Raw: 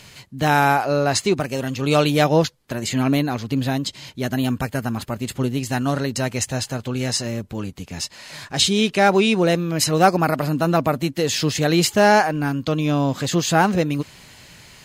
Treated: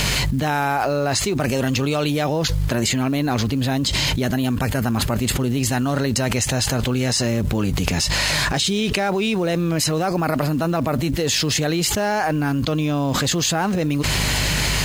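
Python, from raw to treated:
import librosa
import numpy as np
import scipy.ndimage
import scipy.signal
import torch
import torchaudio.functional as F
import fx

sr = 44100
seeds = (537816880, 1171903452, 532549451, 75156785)

y = fx.dmg_buzz(x, sr, base_hz=50.0, harmonics=3, level_db=-49.0, tilt_db=-4, odd_only=False)
y = fx.quant_float(y, sr, bits=4)
y = fx.env_flatten(y, sr, amount_pct=100)
y = y * librosa.db_to_amplitude(-10.0)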